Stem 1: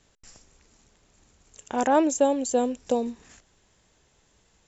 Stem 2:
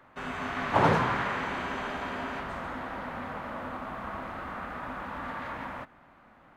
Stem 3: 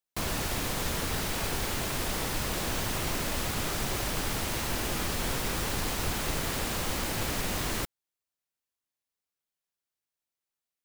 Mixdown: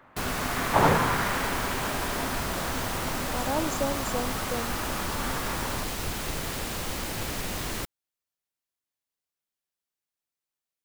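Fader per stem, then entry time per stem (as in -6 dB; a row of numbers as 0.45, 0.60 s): -9.0, +2.0, -1.0 dB; 1.60, 0.00, 0.00 s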